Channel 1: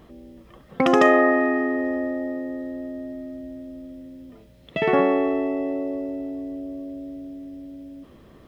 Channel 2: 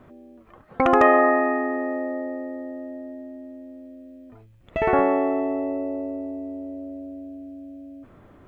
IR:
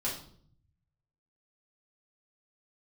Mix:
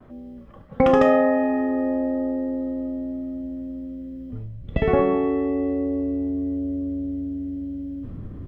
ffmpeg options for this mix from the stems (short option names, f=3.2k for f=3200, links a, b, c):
-filter_complex "[0:a]agate=range=-33dB:threshold=-45dB:ratio=3:detection=peak,volume=-4dB,asplit=2[a][b];[b]volume=-5dB[c];[1:a]asubboost=boost=10.5:cutoff=220,acompressor=threshold=-20dB:ratio=6,adelay=4.4,volume=0.5dB[d];[2:a]atrim=start_sample=2205[e];[c][e]afir=irnorm=-1:irlink=0[f];[a][d][f]amix=inputs=3:normalize=0,highshelf=f=2.3k:g=-10.5"